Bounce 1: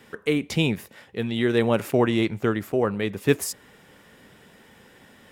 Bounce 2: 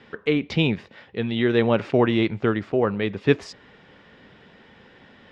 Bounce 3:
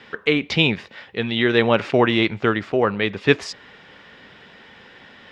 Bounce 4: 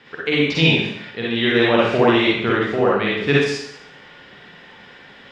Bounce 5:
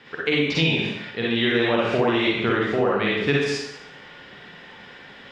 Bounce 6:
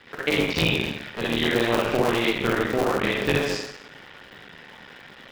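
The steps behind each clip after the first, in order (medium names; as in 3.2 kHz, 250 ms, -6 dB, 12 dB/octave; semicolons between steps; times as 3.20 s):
low-pass 4.5 kHz 24 dB/octave; trim +1.5 dB
tilt shelf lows -4.5 dB, about 720 Hz; trim +4 dB
reverberation RT60 0.70 s, pre-delay 43 ms, DRR -6 dB; trim -4.5 dB
compression 5:1, threshold -17 dBFS, peak gain reduction 7 dB
cycle switcher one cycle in 3, muted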